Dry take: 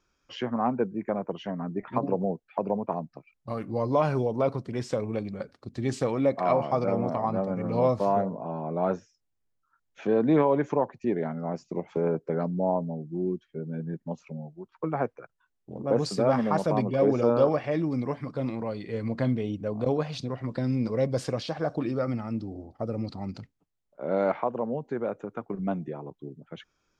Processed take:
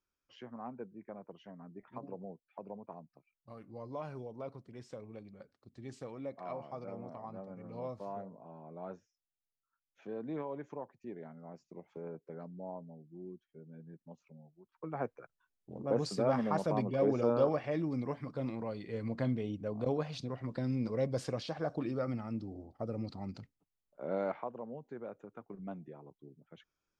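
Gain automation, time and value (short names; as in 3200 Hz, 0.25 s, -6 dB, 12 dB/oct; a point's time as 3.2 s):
14.62 s -18 dB
15.09 s -7 dB
24.02 s -7 dB
24.59 s -14 dB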